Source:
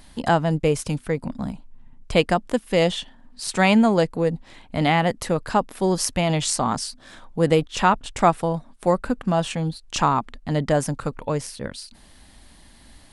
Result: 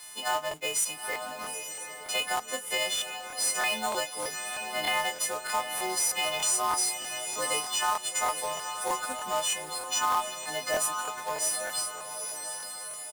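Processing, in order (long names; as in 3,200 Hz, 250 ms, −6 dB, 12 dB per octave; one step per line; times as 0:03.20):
every partial snapped to a pitch grid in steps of 3 semitones
high-pass filter 720 Hz 12 dB per octave
in parallel at +2 dB: downward compressor 5 to 1, threshold −33 dBFS, peak gain reduction 20.5 dB
on the sum: brickwall limiter −10.5 dBFS, peak gain reduction 9.5 dB
log-companded quantiser 4 bits
double-tracking delay 24 ms −9 dB
on a send: feedback delay with all-pass diffusion 892 ms, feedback 42%, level −7 dB
on the sum: regular buffer underruns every 0.31 s, samples 1,024, repeat, from 0:00.49
level −9 dB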